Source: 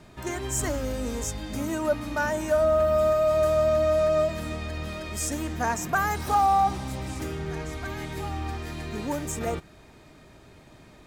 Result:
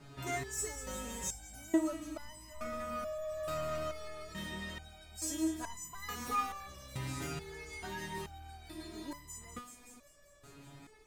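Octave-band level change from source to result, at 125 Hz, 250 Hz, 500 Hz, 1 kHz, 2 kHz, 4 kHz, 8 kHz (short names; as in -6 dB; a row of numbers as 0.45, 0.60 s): -14.0, -7.0, -18.0, -15.5, -12.0, -7.0, -7.0 dB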